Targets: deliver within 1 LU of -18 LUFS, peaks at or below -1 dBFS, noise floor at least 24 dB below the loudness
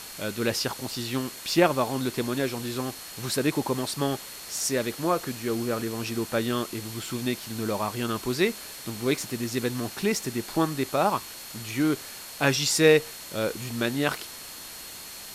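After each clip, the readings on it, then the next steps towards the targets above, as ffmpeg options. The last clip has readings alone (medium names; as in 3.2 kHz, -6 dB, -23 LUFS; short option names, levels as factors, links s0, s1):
steady tone 4.3 kHz; tone level -47 dBFS; noise floor -41 dBFS; noise floor target -52 dBFS; loudness -27.5 LUFS; peak level -6.0 dBFS; loudness target -18.0 LUFS
-> -af "bandreject=f=4300:w=30"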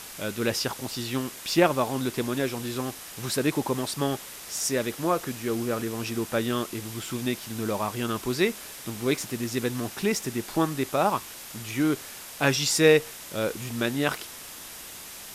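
steady tone not found; noise floor -42 dBFS; noise floor target -52 dBFS
-> -af "afftdn=nr=10:nf=-42"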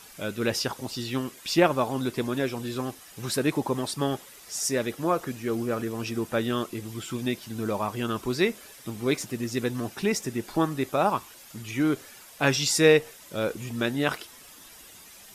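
noise floor -49 dBFS; noise floor target -52 dBFS
-> -af "afftdn=nr=6:nf=-49"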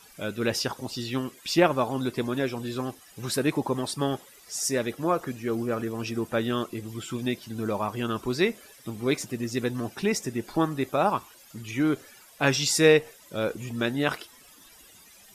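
noise floor -53 dBFS; loudness -27.5 LUFS; peak level -6.5 dBFS; loudness target -18.0 LUFS
-> -af "volume=2.99,alimiter=limit=0.891:level=0:latency=1"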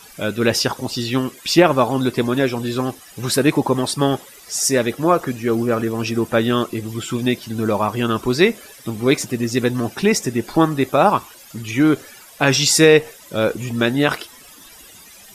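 loudness -18.5 LUFS; peak level -1.0 dBFS; noise floor -44 dBFS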